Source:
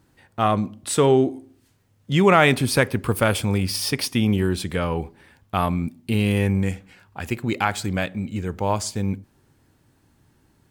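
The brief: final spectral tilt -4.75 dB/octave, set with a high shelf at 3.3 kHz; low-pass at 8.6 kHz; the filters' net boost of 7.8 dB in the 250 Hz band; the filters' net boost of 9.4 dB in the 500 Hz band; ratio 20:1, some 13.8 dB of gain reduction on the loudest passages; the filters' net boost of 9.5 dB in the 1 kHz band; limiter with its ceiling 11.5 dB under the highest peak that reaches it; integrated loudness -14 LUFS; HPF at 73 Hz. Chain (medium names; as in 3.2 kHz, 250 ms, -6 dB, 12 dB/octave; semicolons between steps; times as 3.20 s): high-pass 73 Hz; low-pass 8.6 kHz; peaking EQ 250 Hz +8 dB; peaking EQ 500 Hz +7 dB; peaking EQ 1 kHz +9 dB; treble shelf 3.3 kHz +7.5 dB; compression 20:1, threshold -15 dBFS; trim +11 dB; peak limiter -2.5 dBFS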